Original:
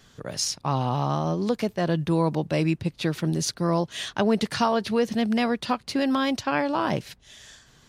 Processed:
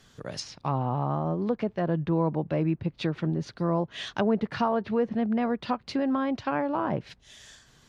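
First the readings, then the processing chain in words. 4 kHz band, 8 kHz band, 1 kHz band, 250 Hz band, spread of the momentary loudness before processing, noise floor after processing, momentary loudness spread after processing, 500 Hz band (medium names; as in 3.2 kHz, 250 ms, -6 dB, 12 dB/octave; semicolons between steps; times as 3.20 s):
-9.0 dB, under -15 dB, -3.0 dB, -2.5 dB, 4 LU, -61 dBFS, 6 LU, -2.5 dB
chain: low-pass that closes with the level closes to 1.4 kHz, closed at -21 dBFS; trim -2.5 dB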